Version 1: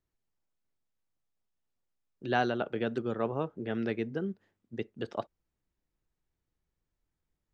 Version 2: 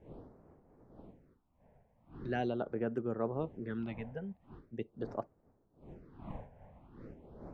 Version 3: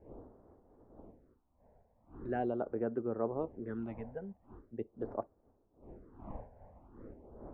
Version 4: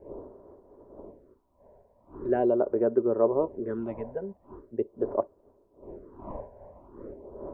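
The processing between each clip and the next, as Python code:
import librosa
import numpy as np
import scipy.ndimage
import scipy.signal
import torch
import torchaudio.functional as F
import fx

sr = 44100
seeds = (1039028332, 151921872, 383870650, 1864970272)

y1 = fx.dmg_wind(x, sr, seeds[0], corner_hz=470.0, level_db=-49.0)
y1 = fx.high_shelf(y1, sr, hz=2200.0, db=-9.0)
y1 = fx.phaser_stages(y1, sr, stages=6, low_hz=320.0, high_hz=4000.0, hz=0.42, feedback_pct=0)
y1 = y1 * 10.0 ** (-2.5 / 20.0)
y2 = scipy.signal.sosfilt(scipy.signal.butter(2, 1200.0, 'lowpass', fs=sr, output='sos'), y1)
y2 = fx.peak_eq(y2, sr, hz=150.0, db=-10.0, octaves=0.76)
y2 = y2 * 10.0 ** (1.5 / 20.0)
y3 = fx.small_body(y2, sr, hz=(400.0, 570.0, 970.0), ring_ms=30, db=12)
y3 = y3 * 10.0 ** (2.5 / 20.0)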